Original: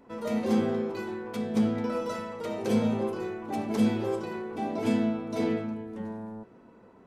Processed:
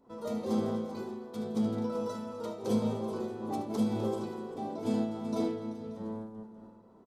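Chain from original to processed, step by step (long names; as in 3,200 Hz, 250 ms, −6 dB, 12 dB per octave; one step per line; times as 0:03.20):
flat-topped bell 2,100 Hz −9.5 dB 1.1 octaves
multi-tap delay 75/165/252/385/583 ms −10.5/−17/−15/−12/−17 dB
amplitude modulation by smooth noise, depth 60%
level −2 dB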